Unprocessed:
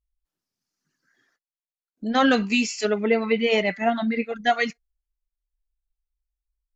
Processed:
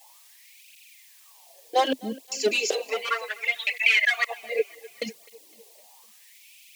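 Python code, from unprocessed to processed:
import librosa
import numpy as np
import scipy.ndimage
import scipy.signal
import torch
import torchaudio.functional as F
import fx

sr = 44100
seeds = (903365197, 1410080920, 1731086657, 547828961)

p1 = fx.block_reorder(x, sr, ms=193.0, group=3)
p2 = fx.low_shelf(p1, sr, hz=210.0, db=-11.0)
p3 = fx.quant_dither(p2, sr, seeds[0], bits=8, dither='triangular')
p4 = p2 + F.gain(torch.from_numpy(p3), -3.5).numpy()
p5 = fx.fixed_phaser(p4, sr, hz=580.0, stages=4)
p6 = np.clip(p5, -10.0 ** (-17.5 / 20.0), 10.0 ** (-17.5 / 20.0))
p7 = fx.filter_lfo_highpass(p6, sr, shape='sine', hz=0.34, low_hz=220.0, high_hz=2500.0, q=6.7)
p8 = p7 + fx.echo_feedback(p7, sr, ms=254, feedback_pct=56, wet_db=-22.5, dry=0)
p9 = fx.flanger_cancel(p8, sr, hz=0.66, depth_ms=6.8)
y = F.gain(torch.from_numpy(p9), 1.5).numpy()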